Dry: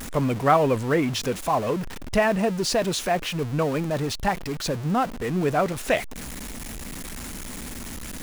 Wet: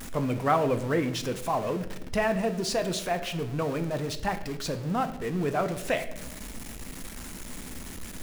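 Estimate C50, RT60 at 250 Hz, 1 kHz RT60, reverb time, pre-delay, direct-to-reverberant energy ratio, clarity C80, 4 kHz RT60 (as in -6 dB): 12.5 dB, 1.4 s, 0.75 s, 0.90 s, 6 ms, 8.5 dB, 14.5 dB, 0.65 s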